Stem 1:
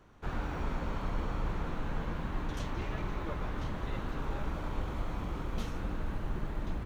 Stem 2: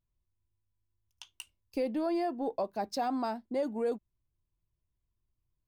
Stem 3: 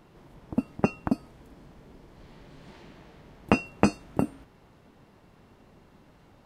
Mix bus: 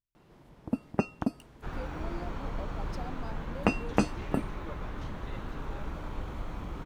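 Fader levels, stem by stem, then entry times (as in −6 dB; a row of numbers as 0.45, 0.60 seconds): −2.0, −12.5, −4.0 decibels; 1.40, 0.00, 0.15 seconds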